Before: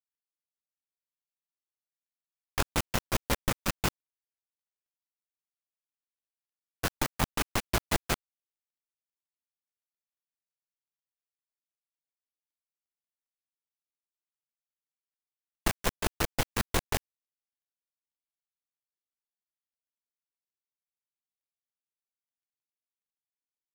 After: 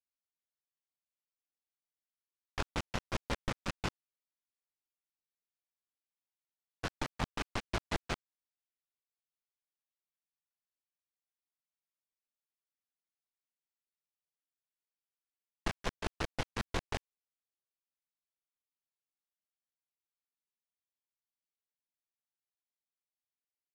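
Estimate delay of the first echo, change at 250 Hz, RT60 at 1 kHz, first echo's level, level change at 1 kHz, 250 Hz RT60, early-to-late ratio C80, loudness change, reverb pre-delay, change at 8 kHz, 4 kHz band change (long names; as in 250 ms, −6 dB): no echo audible, −6.5 dB, no reverb audible, no echo audible, −6.5 dB, no reverb audible, no reverb audible, −8.0 dB, no reverb audible, −14.0 dB, −7.5 dB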